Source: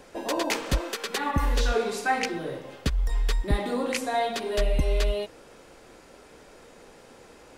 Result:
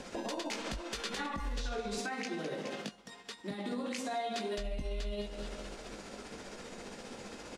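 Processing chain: bell 210 Hz +10 dB 0.39 oct; feedback echo 0.211 s, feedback 49%, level -18 dB; compressor 10:1, threshold -35 dBFS, peak gain reduction 18.5 dB; 1.98–4.58 HPF 160 Hz 24 dB/oct; resonator 710 Hz, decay 0.38 s, mix 60%; tremolo 15 Hz, depth 40%; LPF 6800 Hz 12 dB/oct; doubler 20 ms -9 dB; limiter -40 dBFS, peak gain reduction 9 dB; high shelf 3500 Hz +8 dB; gain +11 dB

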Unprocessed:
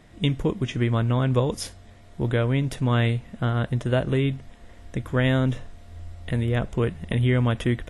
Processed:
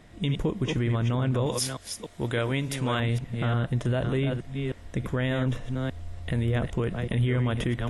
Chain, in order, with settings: reverse delay 0.295 s, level -8 dB; 1.46–3 tilt +2 dB/oct; limiter -17 dBFS, peak gain reduction 8.5 dB

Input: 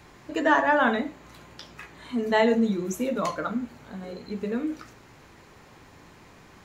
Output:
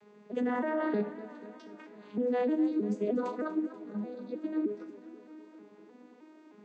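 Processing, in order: arpeggiated vocoder minor triad, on G#3, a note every 0.31 s; limiter -20 dBFS, peak gain reduction 10 dB; bell 410 Hz +8 dB 0.87 oct; warbling echo 0.243 s, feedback 66%, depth 80 cents, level -15.5 dB; gain -6 dB

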